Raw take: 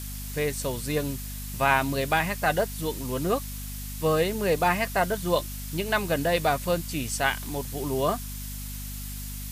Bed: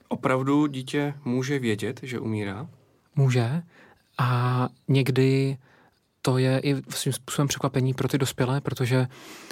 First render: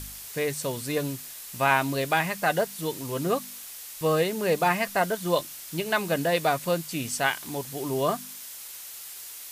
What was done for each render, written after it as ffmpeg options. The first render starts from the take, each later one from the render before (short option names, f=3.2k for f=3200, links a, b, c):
-af "bandreject=f=50:t=h:w=4,bandreject=f=100:t=h:w=4,bandreject=f=150:t=h:w=4,bandreject=f=200:t=h:w=4,bandreject=f=250:t=h:w=4"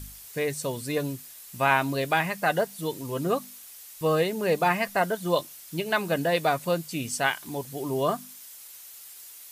-af "afftdn=nr=7:nf=-42"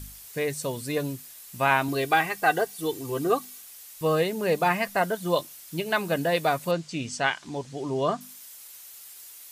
-filter_complex "[0:a]asettb=1/sr,asplit=3[a][b][c];[a]atrim=end=1.884[d];[b]atrim=start=1.88:end=3.61,asetpts=PTS-STARTPTS,afade=t=in:d=0.004:c=qsin,afade=t=out:st=1.726:d=0.004:c=qsin,aecho=1:1:2.6:0.65,atrim=end_sample=76293[e];[c]atrim=start=3.606[f];[d][e]acrossfade=d=0.004:c1=hsin:c2=qsin[g];[g][f]acrossfade=d=0.004:c1=qsin:c2=hsin,asettb=1/sr,asplit=3[h][i][j];[h]atrim=end=6.714[k];[i]atrim=start=6.71:end=8.21,asetpts=PTS-STARTPTS,afade=t=in:d=0.004:c=qsin,afade=t=out:st=1.496:d=0.004:c=qsin,lowpass=f=7.1k:w=0.5412,lowpass=f=7.1k:w=1.3066[l];[j]atrim=start=8.206[m];[k][l]acrossfade=d=0.004:c1=hsin:c2=qsin[n];[n][m]acrossfade=d=0.004:c1=qsin:c2=hsin"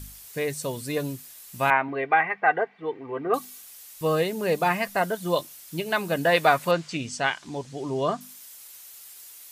-filter_complex "[0:a]asettb=1/sr,asplit=3[a][b][c];[a]atrim=end=1.704[d];[b]atrim=start=1.7:end=3.34,asetpts=PTS-STARTPTS,afade=t=in:d=0.004:c=qsin,afade=t=out:st=1.636:d=0.004:c=qsin,highpass=220,equalizer=f=320:t=q:w=4:g=-6,equalizer=f=870:t=q:w=4:g=3,equalizer=f=2.1k:t=q:w=4:g=8,lowpass=f=2.2k:w=0.5412,lowpass=f=2.2k:w=1.3066[e];[c]atrim=start=3.336[f];[d][e]acrossfade=d=0.004:c1=hsin:c2=qsin[g];[g][f]acrossfade=d=0.004:c1=qsin:c2=hsin,asettb=1/sr,asplit=3[h][i][j];[h]atrim=end=6.254[k];[i]atrim=start=6.25:end=6.97,asetpts=PTS-STARTPTS,afade=t=in:d=0.004:c=qsin,afade=t=out:st=0.716:d=0.004:c=qsin,equalizer=f=1.5k:t=o:w=2.5:g=8[l];[j]atrim=start=6.966[m];[k][l]acrossfade=d=0.004:c1=hsin:c2=qsin[n];[n][m]acrossfade=d=0.004:c1=qsin:c2=hsin"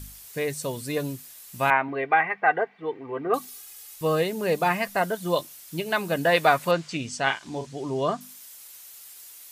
-filter_complex "[0:a]asettb=1/sr,asplit=3[a][b][c];[a]atrim=end=3.474[d];[b]atrim=start=3.47:end=3.96,asetpts=PTS-STARTPTS,afade=t=in:d=0.004:c=qsin,afade=t=out:st=0.486:d=0.004:c=qsin,aecho=1:1:2.4:0.65,atrim=end_sample=21609[e];[c]atrim=start=3.956[f];[d][e]acrossfade=d=0.004:c1=hsin:c2=qsin[g];[g][f]acrossfade=d=0.004:c1=qsin:c2=hsin,asettb=1/sr,asplit=3[h][i][j];[h]atrim=end=7.234[k];[i]atrim=start=7.23:end=7.67,asetpts=PTS-STARTPTS,afade=t=in:d=0.004:c=qsin,afade=t=out:st=0.436:d=0.004:c=qsin,asplit=2[l][m];[m]adelay=37,volume=-7.5dB[n];[l][n]amix=inputs=2:normalize=0,atrim=end_sample=19404[o];[j]atrim=start=7.666[p];[k][o]acrossfade=d=0.004:c1=hsin:c2=qsin[q];[q][p]acrossfade=d=0.004:c1=qsin:c2=hsin"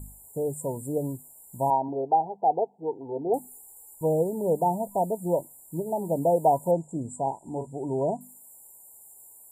-af "afftfilt=real='re*(1-between(b*sr/4096,990,7000))':imag='im*(1-between(b*sr/4096,990,7000))':win_size=4096:overlap=0.75,highshelf=f=11k:g=-8"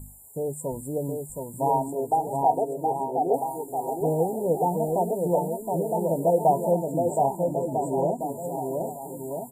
-filter_complex "[0:a]asplit=2[a][b];[b]adelay=12,volume=-11.5dB[c];[a][c]amix=inputs=2:normalize=0,aecho=1:1:720|1296|1757|2125|2420:0.631|0.398|0.251|0.158|0.1"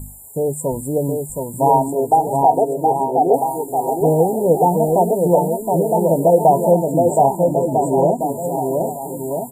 -af "volume=9.5dB,alimiter=limit=-3dB:level=0:latency=1"